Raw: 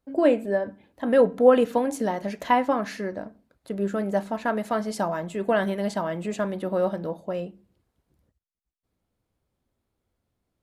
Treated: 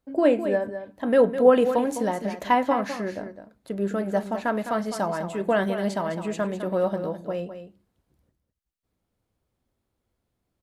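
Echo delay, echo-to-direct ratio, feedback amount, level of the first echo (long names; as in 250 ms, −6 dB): 207 ms, −10.0 dB, repeats not evenly spaced, −10.0 dB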